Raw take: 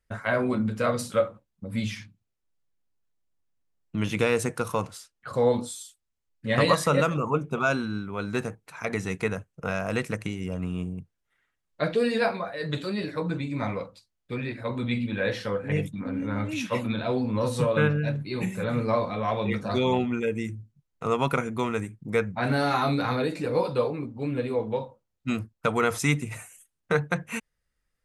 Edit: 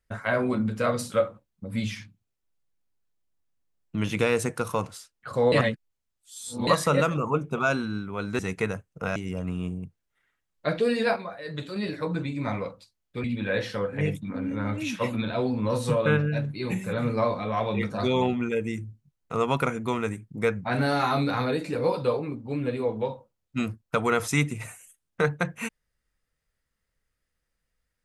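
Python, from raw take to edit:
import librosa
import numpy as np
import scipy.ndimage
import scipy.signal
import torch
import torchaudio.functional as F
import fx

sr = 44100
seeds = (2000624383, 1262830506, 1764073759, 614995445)

y = fx.edit(x, sr, fx.reverse_span(start_s=5.52, length_s=1.15),
    fx.cut(start_s=8.39, length_s=0.62),
    fx.cut(start_s=9.78, length_s=0.53),
    fx.clip_gain(start_s=12.31, length_s=0.6, db=-4.5),
    fx.cut(start_s=14.39, length_s=0.56), tone=tone)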